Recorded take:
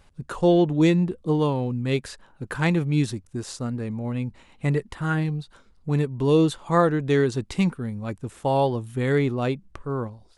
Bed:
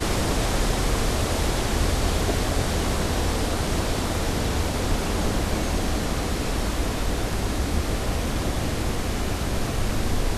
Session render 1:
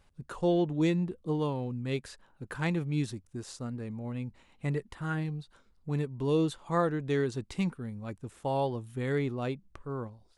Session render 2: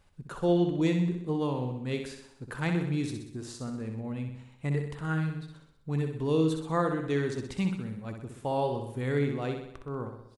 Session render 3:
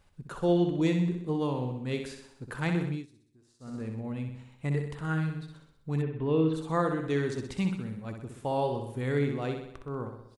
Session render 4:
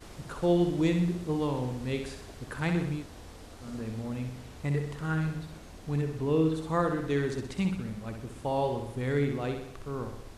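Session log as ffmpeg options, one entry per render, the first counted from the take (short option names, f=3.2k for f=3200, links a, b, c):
-af "volume=-8.5dB"
-af "aecho=1:1:63|126|189|252|315|378|441:0.473|0.27|0.154|0.0876|0.0499|0.0285|0.0162"
-filter_complex "[0:a]asplit=3[a][b][c];[a]afade=t=out:st=6.01:d=0.02[d];[b]lowpass=f=3k:w=0.5412,lowpass=f=3k:w=1.3066,afade=t=in:st=6.01:d=0.02,afade=t=out:st=6.53:d=0.02[e];[c]afade=t=in:st=6.53:d=0.02[f];[d][e][f]amix=inputs=3:normalize=0,asplit=3[g][h][i];[g]atrim=end=3.06,asetpts=PTS-STARTPTS,afade=t=out:st=2.87:d=0.19:silence=0.0668344[j];[h]atrim=start=3.06:end=3.59,asetpts=PTS-STARTPTS,volume=-23.5dB[k];[i]atrim=start=3.59,asetpts=PTS-STARTPTS,afade=t=in:d=0.19:silence=0.0668344[l];[j][k][l]concat=n=3:v=0:a=1"
-filter_complex "[1:a]volume=-23.5dB[a];[0:a][a]amix=inputs=2:normalize=0"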